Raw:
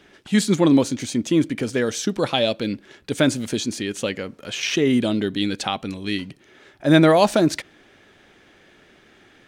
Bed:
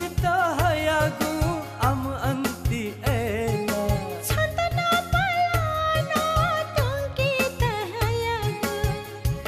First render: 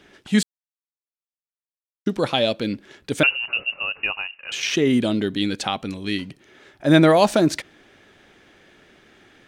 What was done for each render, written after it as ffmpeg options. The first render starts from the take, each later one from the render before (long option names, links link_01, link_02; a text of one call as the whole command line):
ffmpeg -i in.wav -filter_complex "[0:a]asettb=1/sr,asplit=3[link_01][link_02][link_03];[link_01]atrim=end=3.234[link_04];[link_02]atrim=start=3.23:end=4.52,asetpts=PTS-STARTPTS,afade=type=in:duration=0.004:curve=qsin,afade=type=out:start_time=1.286:duration=0.004:curve=qsin,lowpass=frequency=2600:width_type=q:width=0.5098,lowpass=frequency=2600:width_type=q:width=0.6013,lowpass=frequency=2600:width_type=q:width=0.9,lowpass=frequency=2600:width_type=q:width=2.563,afreqshift=-3000[link_05];[link_03]atrim=start=4.516[link_06];[link_04][link_05]acrossfade=duration=0.004:curve1=hsin:curve2=qsin[link_07];[link_07][link_06]acrossfade=duration=0.004:curve1=qsin:curve2=hsin,asplit=3[link_08][link_09][link_10];[link_08]atrim=end=0.43,asetpts=PTS-STARTPTS,afade=type=out:start_time=0.426:duration=0.004:curve=hsin[link_11];[link_09]atrim=start=0.43:end=2.06,asetpts=PTS-STARTPTS,volume=0[link_12];[link_10]atrim=start=2.06,asetpts=PTS-STARTPTS,afade=type=in:duration=0.004:curve=hsin[link_13];[link_11][link_12][link_13]concat=n=3:v=0:a=1" out.wav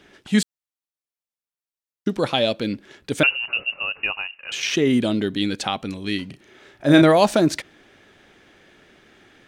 ffmpeg -i in.wav -filter_complex "[0:a]asettb=1/sr,asplit=3[link_01][link_02][link_03];[link_01]atrim=end=6.284[link_04];[link_02]atrim=start=6.28:end=7.02,asetpts=PTS-STARTPTS,afade=type=in:duration=0.004:curve=qsin,afade=type=out:start_time=0.736:duration=0.004:curve=qsin,asplit=2[link_05][link_06];[link_06]adelay=35,volume=-6dB[link_07];[link_05][link_07]amix=inputs=2:normalize=0,atrim=end_sample=32634[link_08];[link_03]atrim=start=7.016[link_09];[link_04][link_08]acrossfade=duration=0.004:curve1=hsin:curve2=qsin[link_10];[link_10][link_09]acrossfade=duration=0.004:curve1=qsin:curve2=hsin" out.wav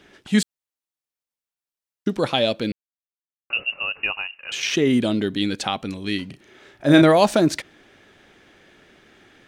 ffmpeg -i in.wav -filter_complex "[0:a]asplit=3[link_01][link_02][link_03];[link_01]atrim=end=2.72,asetpts=PTS-STARTPTS,afade=type=out:start_time=2.716:duration=0.004:curve=hsin[link_04];[link_02]atrim=start=2.72:end=3.5,asetpts=PTS-STARTPTS,volume=0[link_05];[link_03]atrim=start=3.5,asetpts=PTS-STARTPTS,afade=type=in:duration=0.004:curve=hsin[link_06];[link_04][link_05][link_06]concat=n=3:v=0:a=1" out.wav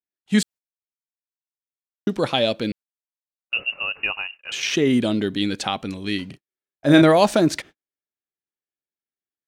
ffmpeg -i in.wav -af "agate=range=-51dB:threshold=-39dB:ratio=16:detection=peak" out.wav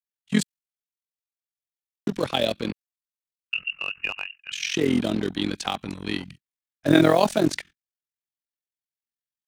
ffmpeg -i in.wav -filter_complex "[0:a]tremolo=f=43:d=0.857,acrossover=split=240|1300|2800[link_01][link_02][link_03][link_04];[link_02]acrusher=bits=5:mix=0:aa=0.5[link_05];[link_01][link_05][link_03][link_04]amix=inputs=4:normalize=0" out.wav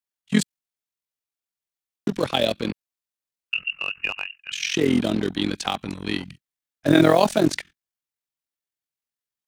ffmpeg -i in.wav -af "volume=2dB,alimiter=limit=-3dB:level=0:latency=1" out.wav